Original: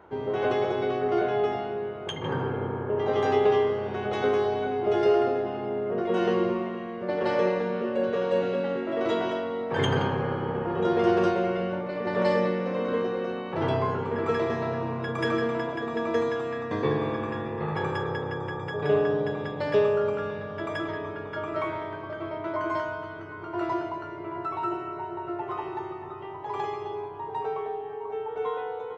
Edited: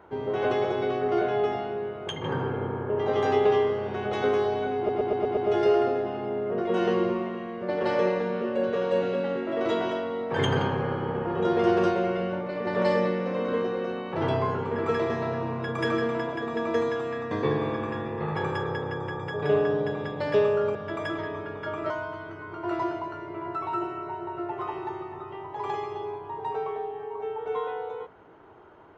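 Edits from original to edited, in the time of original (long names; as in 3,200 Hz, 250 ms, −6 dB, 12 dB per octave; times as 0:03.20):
0:04.77: stutter 0.12 s, 6 plays
0:20.15–0:20.45: remove
0:21.60–0:22.80: remove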